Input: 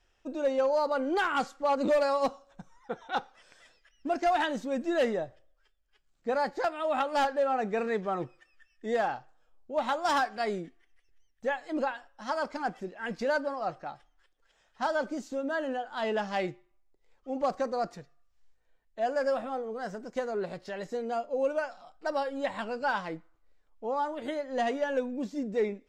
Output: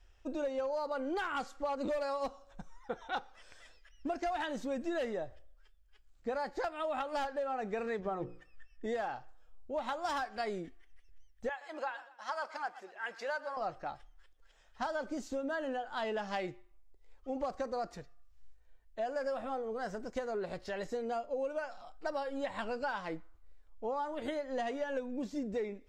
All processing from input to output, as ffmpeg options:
-filter_complex "[0:a]asettb=1/sr,asplit=3[s0][s1][s2];[s0]atrim=end=7.994[s3];[s1]atrim=start=7.99:end=8.86,asetpts=PTS-STARTPTS,afade=t=in:d=0.004:c=qsin,afade=t=out:st=0.866:d=0.004:c=qsin,tiltshelf=f=1200:g=4.5,bandreject=f=60:t=h:w=6,bandreject=f=120:t=h:w=6,bandreject=f=180:t=h:w=6,bandreject=f=240:t=h:w=6,bandreject=f=300:t=h:w=6,bandreject=f=360:t=h:w=6,bandreject=f=420:t=h:w=6,bandreject=f=480:t=h:w=6,bandreject=f=540:t=h:w=6[s4];[s2]atrim=start=8.856[s5];[s3][s4]acrossfade=d=0.004:c1=hsin:c2=qsin[s6];[s6][s5]acrossfade=d=0.004:c1=qsin:c2=hsin,asettb=1/sr,asplit=3[s7][s8][s9];[s7]atrim=end=11.494[s10];[s8]atrim=start=11.49:end=13.57,asetpts=PTS-STARTPTS,afade=t=in:d=0.004:c=qsin,afade=t=out:st=2.076:d=0.004:c=qsin,highpass=1000,tiltshelf=f=1400:g=4.5,aecho=1:1:120|240|360:0.126|0.0478|0.0182,atrim=end_sample=91728[s11];[s9]atrim=start=13.566[s12];[s10][s11]acrossfade=d=0.004:c1=hsin:c2=qsin[s13];[s13][s12]acrossfade=d=0.004:c1=qsin:c2=hsin,lowshelf=f=100:t=q:w=1.5:g=10,acompressor=threshold=0.0224:ratio=6"

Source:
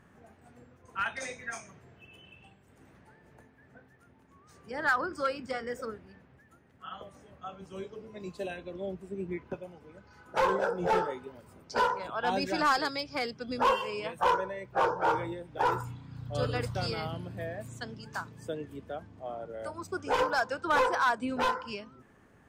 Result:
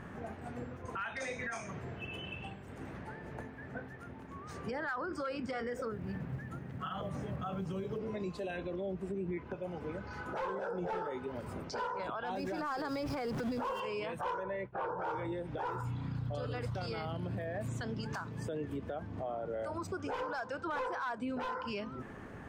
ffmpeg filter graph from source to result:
-filter_complex "[0:a]asettb=1/sr,asplit=3[s0][s1][s2];[s0]atrim=end=5.924[s3];[s1]atrim=start=5.92:end=7.98,asetpts=PTS-STARTPTS,afade=t=in:d=0.004:c=qsin,afade=t=out:st=2.056:d=0.004:c=qsin,equalizer=f=140:w=1.2:g=11,acompressor=threshold=0.00562:ratio=2:attack=3.2:release=140:knee=1:detection=peak,acrusher=bits=8:mode=log:mix=0:aa=0.000001[s4];[s2]atrim=start=7.976[s5];[s3][s4]acrossfade=d=0.004:c1=hsin:c2=qsin[s6];[s6][s5]acrossfade=d=0.004:c1=qsin:c2=hsin,asettb=1/sr,asplit=3[s7][s8][s9];[s7]atrim=end=12.354[s10];[s8]atrim=start=12.35:end=13.8,asetpts=PTS-STARTPTS,afade=t=in:d=0.004:c=qsin,afade=t=out:st=1.446:d=0.004:c=qsin,aeval=exprs='val(0)+0.5*0.0133*sgn(val(0))':c=same,acrossover=split=1600|5300[s11][s12][s13];[s11]acompressor=threshold=0.0355:ratio=4[s14];[s12]acompressor=threshold=0.00398:ratio=4[s15];[s13]acompressor=threshold=0.00398:ratio=4[s16];[s14][s15][s16]amix=inputs=3:normalize=0[s17];[s9]atrim=start=13.796[s18];[s10][s17]acrossfade=d=0.004:c1=hsin:c2=qsin[s19];[s19][s18]acrossfade=d=0.004:c1=qsin:c2=hsin,asettb=1/sr,asplit=3[s20][s21][s22];[s20]atrim=end=14.434[s23];[s21]atrim=start=14.43:end=14.99,asetpts=PTS-STARTPTS,afade=t=in:d=0.004:c=qsin,afade=t=out:st=0.556:d=0.004:c=qsin,lowpass=3100,agate=range=0.0224:threshold=0.00631:ratio=3:release=100:detection=peak[s24];[s22]atrim=start=14.986[s25];[s23][s24]acrossfade=d=0.004:c1=hsin:c2=qsin[s26];[s26][s25]acrossfade=d=0.004:c1=qsin:c2=hsin,acompressor=threshold=0.00447:ratio=2.5,highshelf=f=4600:g=-11,alimiter=level_in=9.44:limit=0.0631:level=0:latency=1:release=44,volume=0.106,volume=4.47"

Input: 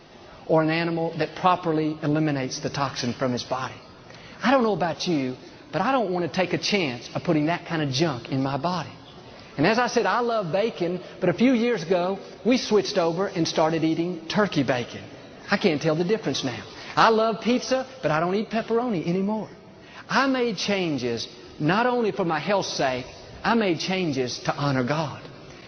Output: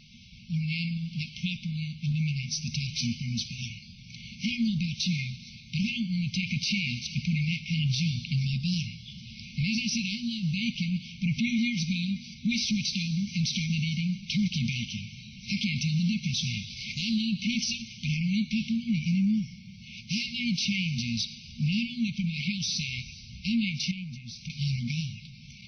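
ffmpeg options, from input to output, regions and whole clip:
-filter_complex "[0:a]asettb=1/sr,asplit=3[s0][s1][s2];[s0]atrim=end=23.914[s3];[s1]atrim=start=23.91:end=24.5,asetpts=PTS-STARTPTS,afade=t=in:d=0.004:c=qsin,afade=t=out:st=0.586:d=0.004:c=qsin,acompressor=threshold=0.0282:ratio=2.5:attack=3.2:release=140:knee=1:detection=peak,highshelf=f=3000:g=-10[s4];[s2]atrim=start=24.496[s5];[s3][s4]acrossfade=d=0.004:c1=hsin:c2=qsin[s6];[s6][s5]acrossfade=d=0.004:c1=qsin:c2=hsin,afftfilt=real='re*(1-between(b*sr/4096,240,2100))':imag='im*(1-between(b*sr/4096,240,2100))':win_size=4096:overlap=0.75,dynaudnorm=f=460:g=17:m=1.58,alimiter=limit=0.1:level=0:latency=1:release=29"

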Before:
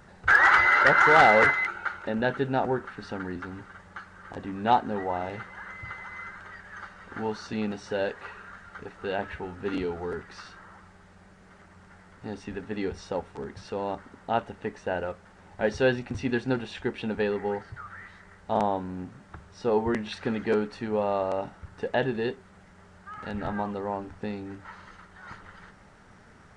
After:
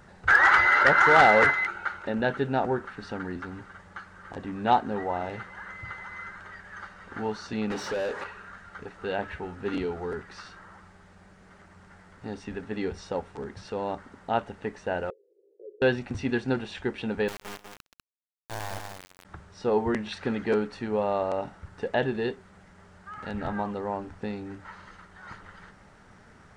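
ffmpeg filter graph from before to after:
-filter_complex "[0:a]asettb=1/sr,asplit=3[s0][s1][s2];[s0]atrim=end=7.704[s3];[s1]atrim=start=7.7:end=8.24,asetpts=PTS-STARTPTS,afade=t=in:d=0.004:c=qsin,afade=t=out:st=0.536:d=0.004:c=qsin,bandreject=f=710:w=9.8,acrossover=split=850|5600[s4][s5][s6];[s4]acompressor=threshold=0.0251:ratio=4[s7];[s5]acompressor=threshold=0.00282:ratio=4[s8];[s6]acompressor=threshold=0.00178:ratio=4[s9];[s7][s8][s9]amix=inputs=3:normalize=0,asplit=2[s10][s11];[s11]highpass=f=720:p=1,volume=20,asoftclip=type=tanh:threshold=0.0708[s12];[s10][s12]amix=inputs=2:normalize=0,lowpass=f=3100:p=1,volume=0.501[s13];[s2]atrim=start=8.236[s14];[s3][s13]acrossfade=d=0.004:c1=hsin:c2=qsin[s15];[s15][s14]acrossfade=d=0.004:c1=qsin:c2=hsin,asettb=1/sr,asplit=3[s16][s17][s18];[s16]atrim=end=15.104[s19];[s17]atrim=start=15.1:end=15.82,asetpts=PTS-STARTPTS,afade=t=in:d=0.004:c=qsin,afade=t=out:st=0.716:d=0.004:c=qsin,acompressor=threshold=0.0178:ratio=5:attack=3.2:release=140:knee=1:detection=peak,asuperpass=centerf=420:order=8:qfactor=2.6[s20];[s18]atrim=start=15.816[s21];[s19][s20]acrossfade=d=0.004:c1=hsin:c2=qsin[s22];[s22][s21]acrossfade=d=0.004:c1=qsin:c2=hsin,asettb=1/sr,asplit=3[s23][s24][s25];[s23]atrim=end=17.284[s26];[s24]atrim=start=17.28:end=19.25,asetpts=PTS-STARTPTS,afade=t=in:d=0.004:c=qsin,afade=t=out:st=1.966:d=0.004:c=qsin,equalizer=f=340:w=0.54:g=-12.5,acrusher=bits=3:dc=4:mix=0:aa=0.000001,aecho=1:1:130|196:0.126|0.531,atrim=end_sample=86877[s27];[s25]atrim=start=19.246[s28];[s26][s27]acrossfade=d=0.004:c1=hsin:c2=qsin[s29];[s29][s28]acrossfade=d=0.004:c1=qsin:c2=hsin"

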